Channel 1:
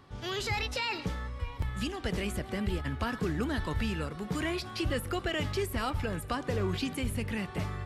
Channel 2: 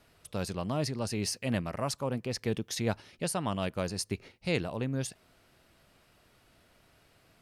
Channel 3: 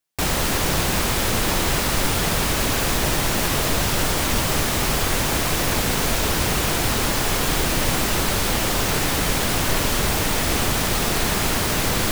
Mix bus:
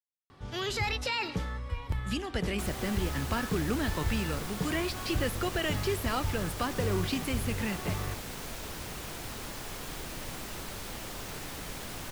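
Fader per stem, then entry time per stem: +1.0 dB, muted, −19.0 dB; 0.30 s, muted, 2.40 s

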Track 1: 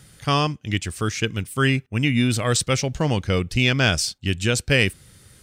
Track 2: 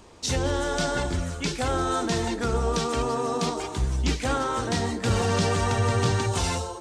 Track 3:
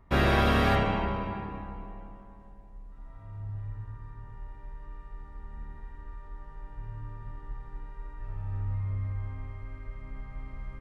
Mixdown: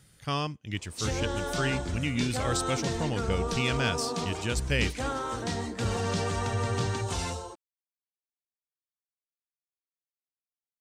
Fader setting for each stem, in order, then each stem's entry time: −10.0 dB, −6.0 dB, muted; 0.00 s, 0.75 s, muted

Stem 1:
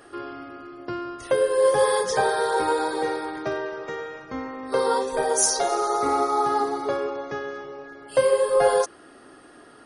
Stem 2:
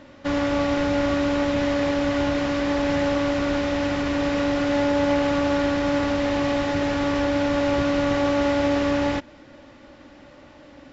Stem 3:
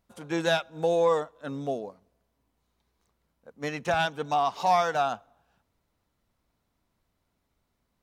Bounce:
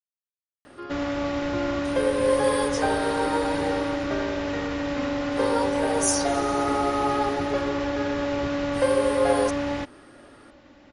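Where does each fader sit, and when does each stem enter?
−3.5 dB, −5.0 dB, muted; 0.65 s, 0.65 s, muted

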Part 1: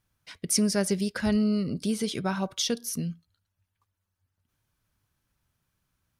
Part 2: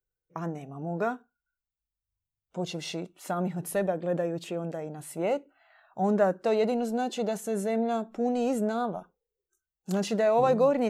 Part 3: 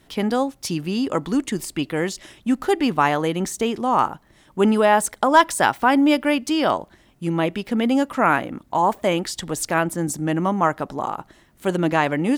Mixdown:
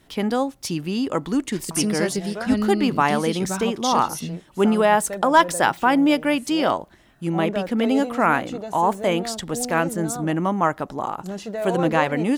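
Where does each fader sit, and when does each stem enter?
+0.5, −3.5, −1.0 decibels; 1.25, 1.35, 0.00 seconds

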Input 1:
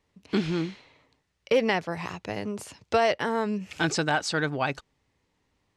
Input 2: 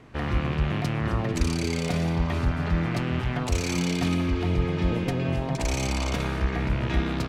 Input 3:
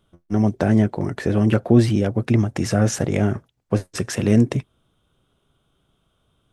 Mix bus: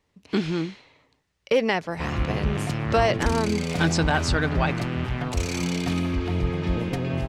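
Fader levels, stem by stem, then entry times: +1.5 dB, −0.5 dB, muted; 0.00 s, 1.85 s, muted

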